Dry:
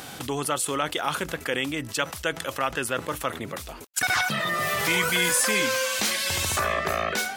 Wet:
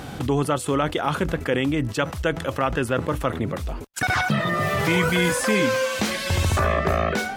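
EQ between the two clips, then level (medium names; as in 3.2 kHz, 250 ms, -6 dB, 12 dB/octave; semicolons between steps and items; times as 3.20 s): tilt EQ -3 dB/octave; +3.0 dB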